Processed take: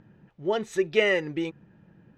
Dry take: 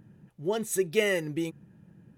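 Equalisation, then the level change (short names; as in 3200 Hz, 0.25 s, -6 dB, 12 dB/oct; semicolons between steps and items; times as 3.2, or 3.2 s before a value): air absorption 190 m; bell 130 Hz -9 dB 3 oct; +7.0 dB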